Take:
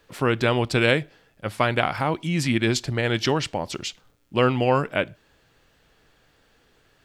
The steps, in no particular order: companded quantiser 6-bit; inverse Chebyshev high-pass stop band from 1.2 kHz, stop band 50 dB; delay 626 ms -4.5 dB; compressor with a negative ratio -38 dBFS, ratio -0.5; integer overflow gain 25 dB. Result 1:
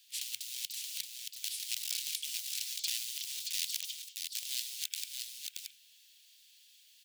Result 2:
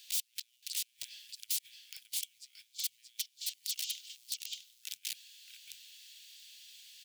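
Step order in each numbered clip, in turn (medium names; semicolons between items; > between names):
companded quantiser > integer overflow > inverse Chebyshev high-pass > compressor with a negative ratio > delay; compressor with a negative ratio > companded quantiser > delay > integer overflow > inverse Chebyshev high-pass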